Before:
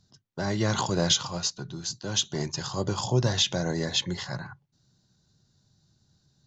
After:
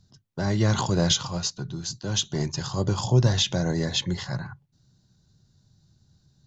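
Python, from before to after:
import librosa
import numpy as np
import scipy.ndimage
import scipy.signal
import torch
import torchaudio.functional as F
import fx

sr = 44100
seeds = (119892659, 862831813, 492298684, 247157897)

y = fx.low_shelf(x, sr, hz=170.0, db=9.0)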